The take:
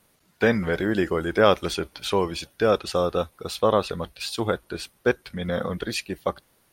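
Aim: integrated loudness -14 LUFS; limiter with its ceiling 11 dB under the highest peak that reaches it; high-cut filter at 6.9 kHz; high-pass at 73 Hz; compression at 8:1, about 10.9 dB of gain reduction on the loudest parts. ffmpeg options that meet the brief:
-af "highpass=73,lowpass=6900,acompressor=threshold=0.0562:ratio=8,volume=10.6,alimiter=limit=0.841:level=0:latency=1"

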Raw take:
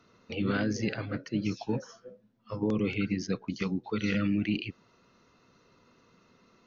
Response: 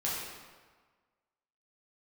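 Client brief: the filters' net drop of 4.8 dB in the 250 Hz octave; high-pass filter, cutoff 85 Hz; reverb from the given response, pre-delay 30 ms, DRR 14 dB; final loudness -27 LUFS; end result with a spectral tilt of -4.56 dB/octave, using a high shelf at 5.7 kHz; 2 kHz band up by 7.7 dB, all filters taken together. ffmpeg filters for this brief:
-filter_complex "[0:a]highpass=85,equalizer=f=250:t=o:g=-6.5,equalizer=f=2000:t=o:g=9,highshelf=f=5700:g=7,asplit=2[s0][s1];[1:a]atrim=start_sample=2205,adelay=30[s2];[s1][s2]afir=irnorm=-1:irlink=0,volume=0.1[s3];[s0][s3]amix=inputs=2:normalize=0,volume=1.68"

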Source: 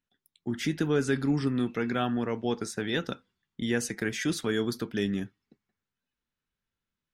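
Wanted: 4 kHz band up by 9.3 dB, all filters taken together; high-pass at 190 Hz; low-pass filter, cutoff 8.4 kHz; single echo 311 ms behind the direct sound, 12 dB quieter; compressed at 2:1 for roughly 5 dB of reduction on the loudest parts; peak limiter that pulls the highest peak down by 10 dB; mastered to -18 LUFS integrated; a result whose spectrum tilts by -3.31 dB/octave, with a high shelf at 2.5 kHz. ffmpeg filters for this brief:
-af "highpass=190,lowpass=8400,highshelf=f=2500:g=5.5,equalizer=f=4000:t=o:g=7,acompressor=threshold=0.0282:ratio=2,alimiter=level_in=1.41:limit=0.0631:level=0:latency=1,volume=0.708,aecho=1:1:311:0.251,volume=8.91"

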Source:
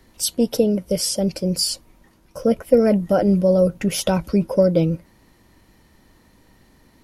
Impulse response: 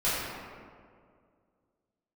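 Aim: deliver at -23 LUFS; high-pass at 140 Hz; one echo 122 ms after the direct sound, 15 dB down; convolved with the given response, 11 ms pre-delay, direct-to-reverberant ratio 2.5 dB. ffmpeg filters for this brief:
-filter_complex "[0:a]highpass=140,aecho=1:1:122:0.178,asplit=2[s0][s1];[1:a]atrim=start_sample=2205,adelay=11[s2];[s1][s2]afir=irnorm=-1:irlink=0,volume=0.188[s3];[s0][s3]amix=inputs=2:normalize=0,volume=0.531"

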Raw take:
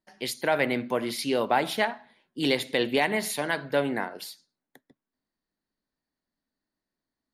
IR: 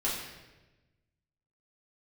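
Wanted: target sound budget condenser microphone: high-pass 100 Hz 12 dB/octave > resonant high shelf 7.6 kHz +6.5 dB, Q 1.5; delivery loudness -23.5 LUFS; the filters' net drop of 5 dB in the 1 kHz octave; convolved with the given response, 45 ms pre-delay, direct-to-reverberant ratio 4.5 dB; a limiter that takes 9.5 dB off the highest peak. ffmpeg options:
-filter_complex "[0:a]equalizer=f=1000:t=o:g=-7,alimiter=limit=0.0891:level=0:latency=1,asplit=2[s0][s1];[1:a]atrim=start_sample=2205,adelay=45[s2];[s1][s2]afir=irnorm=-1:irlink=0,volume=0.266[s3];[s0][s3]amix=inputs=2:normalize=0,highpass=100,highshelf=f=7600:t=q:w=1.5:g=6.5,volume=2.11"

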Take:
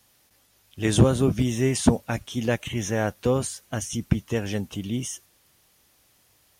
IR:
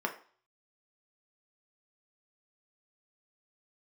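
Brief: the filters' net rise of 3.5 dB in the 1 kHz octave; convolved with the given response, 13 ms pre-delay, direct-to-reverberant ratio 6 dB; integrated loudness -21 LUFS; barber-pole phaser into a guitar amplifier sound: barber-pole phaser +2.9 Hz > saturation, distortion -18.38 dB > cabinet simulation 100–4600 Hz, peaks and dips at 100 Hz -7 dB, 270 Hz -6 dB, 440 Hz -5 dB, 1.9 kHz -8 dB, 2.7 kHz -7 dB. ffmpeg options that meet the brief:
-filter_complex "[0:a]equalizer=f=1000:t=o:g=5.5,asplit=2[s0][s1];[1:a]atrim=start_sample=2205,adelay=13[s2];[s1][s2]afir=irnorm=-1:irlink=0,volume=0.237[s3];[s0][s3]amix=inputs=2:normalize=0,asplit=2[s4][s5];[s5]afreqshift=2.9[s6];[s4][s6]amix=inputs=2:normalize=1,asoftclip=threshold=0.299,highpass=100,equalizer=f=100:t=q:w=4:g=-7,equalizer=f=270:t=q:w=4:g=-6,equalizer=f=440:t=q:w=4:g=-5,equalizer=f=1900:t=q:w=4:g=-8,equalizer=f=2700:t=q:w=4:g=-7,lowpass=f=4600:w=0.5412,lowpass=f=4600:w=1.3066,volume=3.16"

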